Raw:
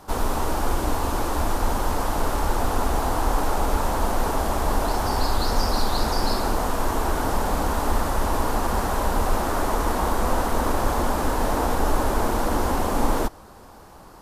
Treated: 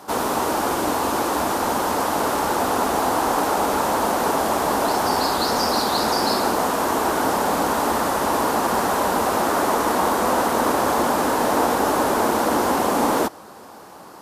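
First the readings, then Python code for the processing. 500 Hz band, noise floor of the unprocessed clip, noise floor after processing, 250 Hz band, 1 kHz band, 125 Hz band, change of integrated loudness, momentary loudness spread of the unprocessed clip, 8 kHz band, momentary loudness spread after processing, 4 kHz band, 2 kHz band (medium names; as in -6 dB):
+5.5 dB, -45 dBFS, -42 dBFS, +4.0 dB, +5.5 dB, -7.0 dB, +4.5 dB, 2 LU, +5.5 dB, 2 LU, +5.5 dB, +5.5 dB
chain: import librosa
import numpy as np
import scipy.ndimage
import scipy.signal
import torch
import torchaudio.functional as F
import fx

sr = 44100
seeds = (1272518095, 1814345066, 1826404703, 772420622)

y = scipy.signal.sosfilt(scipy.signal.butter(2, 200.0, 'highpass', fs=sr, output='sos'), x)
y = F.gain(torch.from_numpy(y), 5.5).numpy()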